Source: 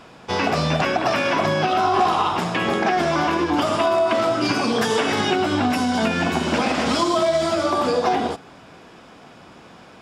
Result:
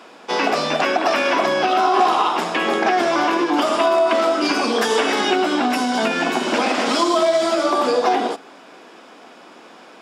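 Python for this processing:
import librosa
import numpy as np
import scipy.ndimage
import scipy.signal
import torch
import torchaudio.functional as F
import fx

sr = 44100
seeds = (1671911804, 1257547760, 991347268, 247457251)

y = scipy.signal.sosfilt(scipy.signal.butter(4, 250.0, 'highpass', fs=sr, output='sos'), x)
y = y * 10.0 ** (2.5 / 20.0)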